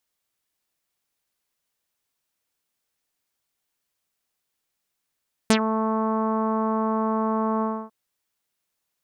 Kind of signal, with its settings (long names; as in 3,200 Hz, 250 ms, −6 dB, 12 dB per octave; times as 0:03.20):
subtractive voice saw A3 24 dB per octave, low-pass 1,100 Hz, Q 3, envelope 3.5 octaves, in 0.10 s, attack 1.3 ms, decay 0.08 s, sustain −10.5 dB, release 0.28 s, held 2.12 s